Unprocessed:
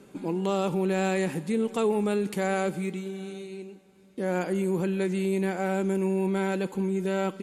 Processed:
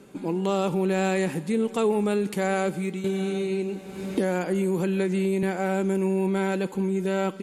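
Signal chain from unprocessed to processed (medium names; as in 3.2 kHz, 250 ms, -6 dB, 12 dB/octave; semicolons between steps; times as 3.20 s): 3.04–5.43 s: three bands compressed up and down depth 100%; trim +2 dB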